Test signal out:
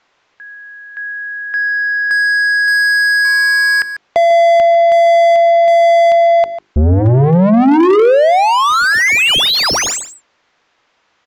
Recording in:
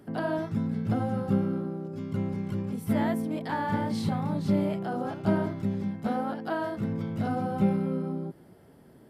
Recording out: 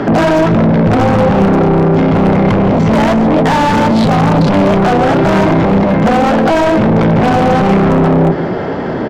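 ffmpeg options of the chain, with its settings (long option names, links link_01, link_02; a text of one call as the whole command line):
ffmpeg -i in.wav -filter_complex "[0:a]apsyclip=26dB,aresample=16000,asoftclip=type=tanh:threshold=-13.5dB,aresample=44100,aemphasis=mode=reproduction:type=75fm,bandreject=frequency=50:width_type=h:width=6,bandreject=frequency=100:width_type=h:width=6,bandreject=frequency=150:width_type=h:width=6,bandreject=frequency=200:width_type=h:width=6,bandreject=frequency=250:width_type=h:width=6,bandreject=frequency=300:width_type=h:width=6,bandreject=frequency=350:width_type=h:width=6,bandreject=frequency=400:width_type=h:width=6,acontrast=82,asplit=2[link_01][link_02];[link_02]highpass=frequency=720:poles=1,volume=17dB,asoftclip=type=tanh:threshold=-3.5dB[link_03];[link_01][link_03]amix=inputs=2:normalize=0,lowpass=frequency=2700:poles=1,volume=-6dB,lowshelf=frequency=180:gain=3.5,asplit=2[link_04][link_05];[link_05]aecho=0:1:146:0.188[link_06];[link_04][link_06]amix=inputs=2:normalize=0,acrossover=split=500|3000[link_07][link_08][link_09];[link_08]acompressor=threshold=-13dB:ratio=2.5[link_10];[link_07][link_10][link_09]amix=inputs=3:normalize=0,aeval=exprs='0.708*(abs(mod(val(0)/0.708+3,4)-2)-1)':channel_layout=same" out.wav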